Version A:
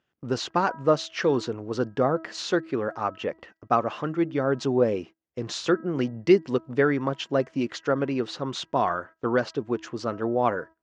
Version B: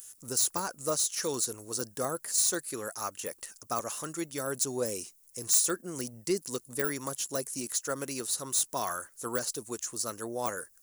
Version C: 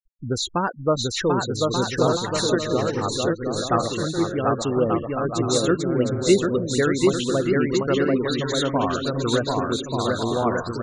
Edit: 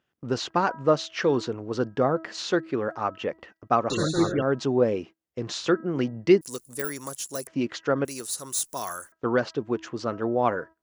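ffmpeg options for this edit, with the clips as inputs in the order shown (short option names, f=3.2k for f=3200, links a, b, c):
-filter_complex "[1:a]asplit=2[a][b];[0:a]asplit=4[c][d][e][f];[c]atrim=end=3.902[g];[2:a]atrim=start=3.898:end=4.422[h];[d]atrim=start=4.418:end=6.412[i];[a]atrim=start=6.408:end=7.472[j];[e]atrim=start=7.468:end=8.052[k];[b]atrim=start=8.048:end=9.122[l];[f]atrim=start=9.118[m];[g][h]acrossfade=d=0.004:c1=hsin:c2=hsin[n];[n][i]acrossfade=d=0.004:c1=hsin:c2=hsin[o];[o][j]acrossfade=d=0.004:c1=hsin:c2=hsin[p];[p][k]acrossfade=d=0.004:c1=hsin:c2=hsin[q];[q][l]acrossfade=d=0.004:c1=hsin:c2=hsin[r];[r][m]acrossfade=d=0.004:c1=hsin:c2=hsin"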